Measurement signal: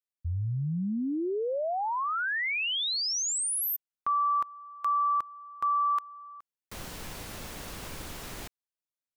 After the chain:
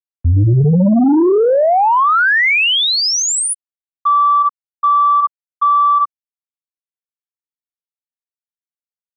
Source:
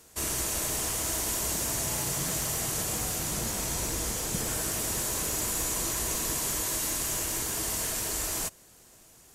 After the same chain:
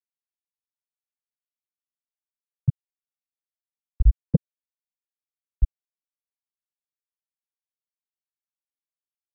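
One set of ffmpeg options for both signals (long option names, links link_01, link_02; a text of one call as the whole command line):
ffmpeg -i in.wav -filter_complex "[0:a]asplit=2[link_01][link_02];[link_02]adelay=62,lowpass=frequency=1100:poles=1,volume=-9.5dB,asplit=2[link_03][link_04];[link_04]adelay=62,lowpass=frequency=1100:poles=1,volume=0.39,asplit=2[link_05][link_06];[link_06]adelay=62,lowpass=frequency=1100:poles=1,volume=0.39,asplit=2[link_07][link_08];[link_08]adelay=62,lowpass=frequency=1100:poles=1,volume=0.39[link_09];[link_01][link_03][link_05][link_07][link_09]amix=inputs=5:normalize=0,afftfilt=real='re*gte(hypot(re,im),0.251)':imag='im*gte(hypot(re,im),0.251)':win_size=1024:overlap=0.75,acrossover=split=350|5900[link_10][link_11][link_12];[link_11]acompressor=threshold=-39dB:ratio=10:attack=0.14:release=82:knee=2.83:detection=peak[link_13];[link_10][link_13][link_12]amix=inputs=3:normalize=0,highshelf=frequency=4700:gain=-12,acontrast=85,aeval=exprs='0.15*sin(PI/2*1.78*val(0)/0.15)':channel_layout=same,alimiter=level_in=24.5dB:limit=-1dB:release=50:level=0:latency=1,adynamicequalizer=threshold=0.158:dfrequency=2900:dqfactor=0.7:tfrequency=2900:tqfactor=0.7:attack=5:release=100:ratio=0.375:range=2:mode=cutabove:tftype=highshelf,volume=-7.5dB" out.wav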